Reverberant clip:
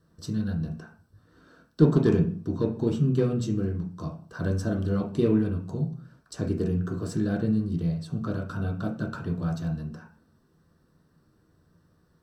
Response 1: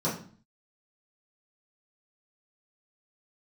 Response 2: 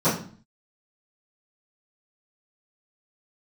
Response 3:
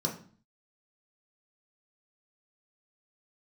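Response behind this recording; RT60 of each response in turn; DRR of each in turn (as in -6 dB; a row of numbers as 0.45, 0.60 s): 3; 0.45, 0.45, 0.45 s; -10.0, -19.5, -1.0 dB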